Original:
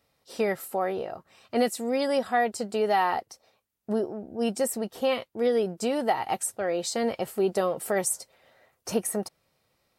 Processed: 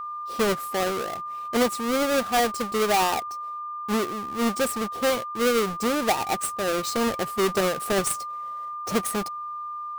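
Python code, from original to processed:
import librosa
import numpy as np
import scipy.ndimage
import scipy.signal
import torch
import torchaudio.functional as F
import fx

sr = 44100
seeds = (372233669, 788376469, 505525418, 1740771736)

y = fx.halfwave_hold(x, sr)
y = y + 10.0 ** (-29.0 / 20.0) * np.sin(2.0 * np.pi * 1200.0 * np.arange(len(y)) / sr)
y = F.gain(torch.from_numpy(y), -2.0).numpy()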